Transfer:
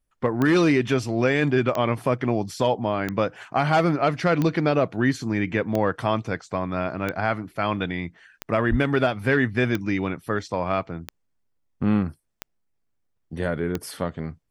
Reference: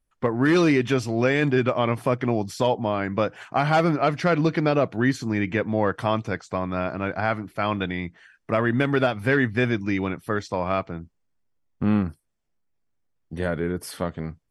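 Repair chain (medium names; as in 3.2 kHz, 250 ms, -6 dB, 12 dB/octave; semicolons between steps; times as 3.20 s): de-click; 8.70–8.82 s: high-pass 140 Hz 24 dB/octave; interpolate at 13.17 s, 3.6 ms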